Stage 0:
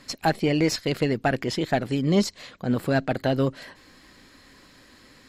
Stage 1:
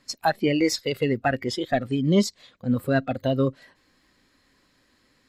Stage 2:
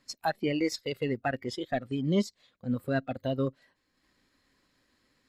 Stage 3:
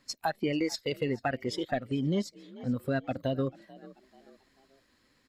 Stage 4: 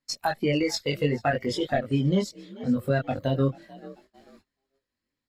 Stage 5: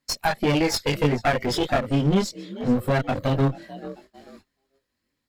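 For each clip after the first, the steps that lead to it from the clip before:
noise reduction from a noise print of the clip's start 13 dB; level +1.5 dB
transient designer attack −1 dB, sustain −6 dB; level −6.5 dB
echo with shifted repeats 438 ms, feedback 41%, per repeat +45 Hz, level −23 dB; downward compressor, threshold −28 dBFS, peak gain reduction 7 dB; level +2.5 dB
noise gate −58 dBFS, range −24 dB; multi-voice chorus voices 4, 0.66 Hz, delay 21 ms, depth 1.2 ms; level +8.5 dB
asymmetric clip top −35 dBFS; level +7 dB

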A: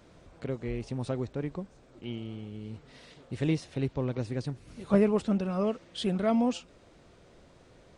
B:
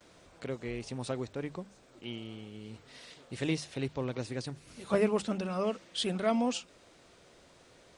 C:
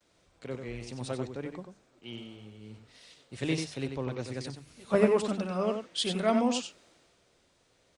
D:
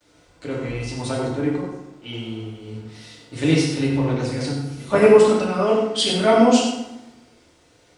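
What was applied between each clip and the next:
mains-hum notches 50/100/150/200 Hz; noise gate with hold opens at −52 dBFS; spectral tilt +2 dB per octave
slap from a distant wall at 16 metres, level −6 dB; multiband upward and downward expander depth 40%
feedback delay network reverb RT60 0.91 s, low-frequency decay 1.25×, high-frequency decay 0.7×, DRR −4.5 dB; level +6 dB

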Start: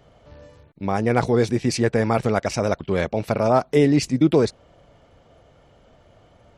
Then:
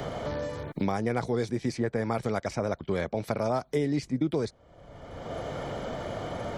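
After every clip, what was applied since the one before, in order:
notch filter 2,700 Hz, Q 6.6
multiband upward and downward compressor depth 100%
level −9 dB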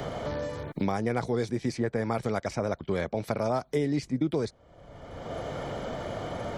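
no processing that can be heard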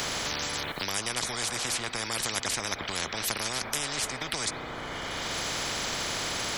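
spring reverb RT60 3.5 s, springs 32/36 ms, chirp 65 ms, DRR 15.5 dB
every bin compressed towards the loudest bin 10 to 1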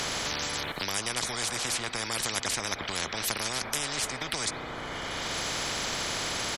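downsampling to 32,000 Hz

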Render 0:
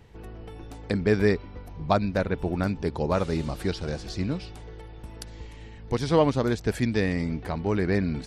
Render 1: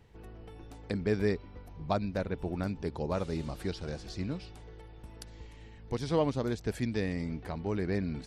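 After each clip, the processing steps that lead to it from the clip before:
dynamic equaliser 1,500 Hz, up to −3 dB, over −36 dBFS, Q 0.92
level −7 dB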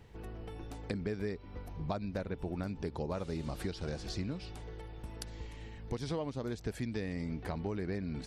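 downward compressor 6 to 1, threshold −37 dBFS, peak gain reduction 14 dB
level +3.5 dB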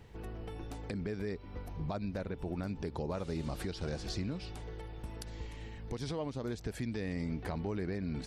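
brickwall limiter −28.5 dBFS, peak gain reduction 6.5 dB
level +1.5 dB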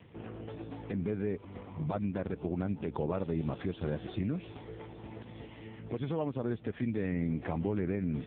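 level +5 dB
AMR narrowband 5.15 kbit/s 8,000 Hz

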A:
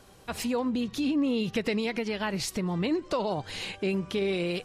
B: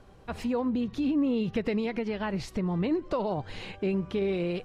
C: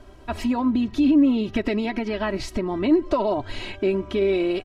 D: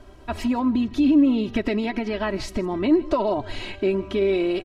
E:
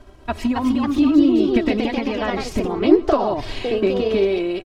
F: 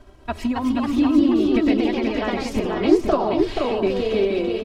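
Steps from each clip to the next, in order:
low-pass filter 1,500 Hz 6 dB per octave; low-shelf EQ 68 Hz +8.5 dB
comb filter 3.1 ms, depth 85%; level +5 dB
single-tap delay 158 ms −20.5 dB
transient designer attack +5 dB, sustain −1 dB; delay with pitch and tempo change per echo 304 ms, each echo +2 semitones, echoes 2
single-tap delay 480 ms −4.5 dB; level −2.5 dB

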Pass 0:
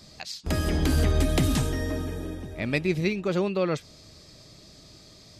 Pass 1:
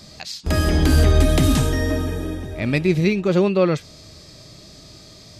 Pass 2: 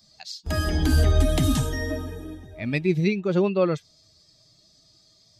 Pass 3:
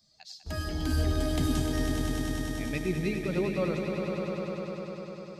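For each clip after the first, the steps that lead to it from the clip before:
harmonic and percussive parts rebalanced harmonic +6 dB; level +3 dB
spectral dynamics exaggerated over time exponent 1.5; level −2.5 dB
echo that builds up and dies away 100 ms, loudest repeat 5, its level −7.5 dB; level −9 dB

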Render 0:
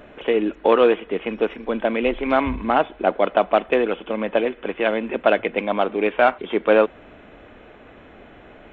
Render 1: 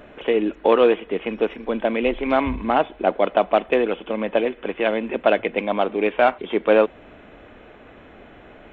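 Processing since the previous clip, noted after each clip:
dynamic equaliser 1,400 Hz, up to −3 dB, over −39 dBFS, Q 2.4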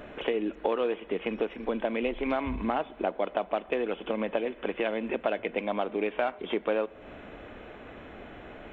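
downward compressor 4 to 1, threshold −27 dBFS, peak gain reduction 14 dB
on a send at −22 dB: convolution reverb RT60 3.1 s, pre-delay 8 ms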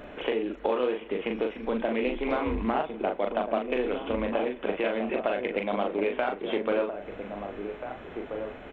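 double-tracking delay 40 ms −4.5 dB
slap from a distant wall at 280 metres, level −7 dB
highs frequency-modulated by the lows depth 0.13 ms

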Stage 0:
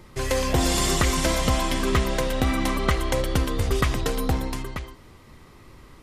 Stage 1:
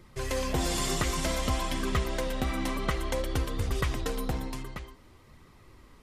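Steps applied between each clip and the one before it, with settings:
flanger 0.55 Hz, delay 0.5 ms, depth 7 ms, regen −48%
level −3 dB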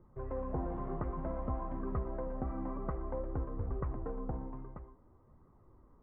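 inverse Chebyshev low-pass filter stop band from 5,000 Hz, stop band 70 dB
level −7 dB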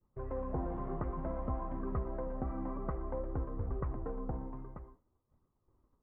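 downward expander −51 dBFS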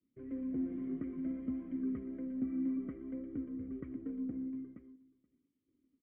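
formant filter i
slap from a distant wall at 82 metres, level −23 dB
level +10 dB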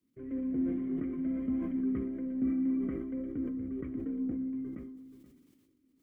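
hum removal 46.77 Hz, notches 29
level that may fall only so fast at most 31 dB per second
level +4.5 dB

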